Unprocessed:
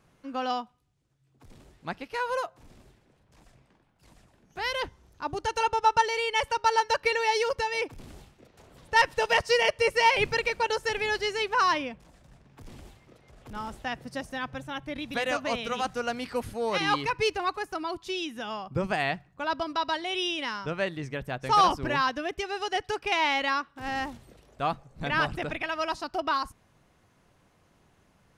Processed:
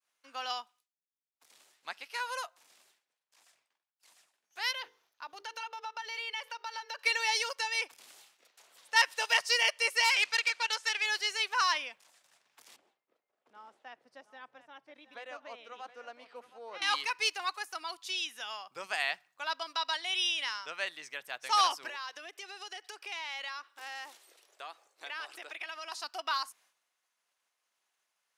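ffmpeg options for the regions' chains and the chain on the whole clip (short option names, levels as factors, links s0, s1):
-filter_complex "[0:a]asettb=1/sr,asplit=3[s0][s1][s2];[s0]atrim=end=4.714[s3];[s1]atrim=start=4.71:end=6.99,asetpts=PTS-STARTPTS,afade=t=in:d=0.004:c=qsin,afade=t=out:st=2.276:d=0.004:c=qsin,equalizer=f=8300:t=o:w=0.88:g=-14,bandreject=f=50:t=h:w=6,bandreject=f=100:t=h:w=6,bandreject=f=150:t=h:w=6,bandreject=f=200:t=h:w=6,bandreject=f=250:t=h:w=6,bandreject=f=300:t=h:w=6,bandreject=f=350:t=h:w=6,bandreject=f=400:t=h:w=6,bandreject=f=450:t=h:w=6,bandreject=f=500:t=h:w=6,acompressor=threshold=0.0251:ratio=4:attack=3.2:release=140:knee=1:detection=peak[s4];[s2]atrim=start=6.986[s5];[s3][s4]acrossfade=d=0.004:c1=hsin:c2=qsin[s6];[s6][s5]acrossfade=d=0.004:c1=qsin:c2=hsin,asettb=1/sr,asplit=3[s7][s8][s9];[s7]atrim=end=10.044[s10];[s8]atrim=start=10.04:end=11.06,asetpts=PTS-STARTPTS,afade=t=in:d=0.004:c=qsin,afade=t=out:st=1.016:d=0.004:c=qsin,lowpass=5800,tiltshelf=f=730:g=-5,aeval=exprs='(tanh(7.08*val(0)+0.55)-tanh(0.55))/7.08':c=same[s11];[s9]atrim=start=11.056[s12];[s10][s11]acrossfade=d=0.004:c1=hsin:c2=qsin[s13];[s13][s12]acrossfade=d=0.004:c1=qsin:c2=hsin,asettb=1/sr,asplit=3[s14][s15][s16];[s14]atrim=end=12.764[s17];[s15]atrim=start=12.76:end=16.82,asetpts=PTS-STARTPTS,afade=t=in:d=0.004:c=qsin,afade=t=out:st=4.056:d=0.004:c=qsin,bandpass=f=300:t=q:w=0.8,aecho=1:1:719:0.188,atrim=end_sample=179046[s18];[s16]atrim=start=16.816[s19];[s17][s18]acrossfade=d=0.004:c1=hsin:c2=qsin[s20];[s20][s19]acrossfade=d=0.004:c1=qsin:c2=hsin,asettb=1/sr,asplit=3[s21][s22][s23];[s21]atrim=end=21.894[s24];[s22]atrim=start=21.89:end=25.92,asetpts=PTS-STARTPTS,afade=t=in:d=0.004:c=qsin,afade=t=out:st=4.026:d=0.004:c=qsin,lowshelf=f=260:t=q:w=3:g=-9.5,acompressor=threshold=0.0224:ratio=5:attack=3.2:release=140:knee=1:detection=peak[s25];[s23]atrim=start=25.916[s26];[s24][s25]acrossfade=d=0.004:c1=hsin:c2=qsin[s27];[s27][s26]acrossfade=d=0.004:c1=qsin:c2=hsin,highshelf=f=2100:g=12,agate=range=0.0224:threshold=0.00251:ratio=3:detection=peak,highpass=780,volume=0.422"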